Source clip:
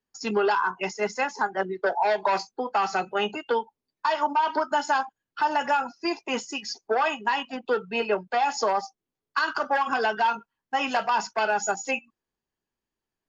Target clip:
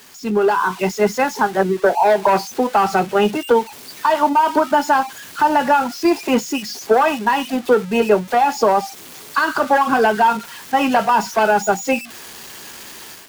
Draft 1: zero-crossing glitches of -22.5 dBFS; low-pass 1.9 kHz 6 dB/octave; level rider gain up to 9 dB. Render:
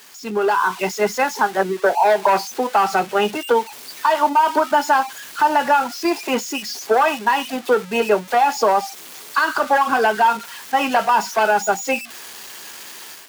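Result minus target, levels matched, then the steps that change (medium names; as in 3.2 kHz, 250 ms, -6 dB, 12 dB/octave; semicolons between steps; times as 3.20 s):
250 Hz band -4.5 dB
add after low-pass: bass shelf 300 Hz +12 dB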